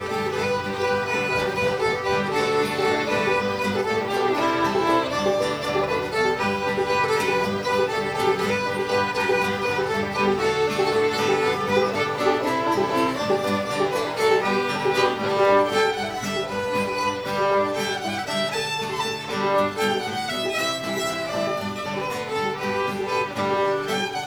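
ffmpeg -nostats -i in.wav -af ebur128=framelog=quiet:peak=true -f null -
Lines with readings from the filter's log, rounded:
Integrated loudness:
  I:         -22.7 LUFS
  Threshold: -32.7 LUFS
Loudness range:
  LRA:         2.9 LU
  Threshold: -42.6 LUFS
  LRA low:   -24.5 LUFS
  LRA high:  -21.6 LUFS
True peak:
  Peak:       -7.2 dBFS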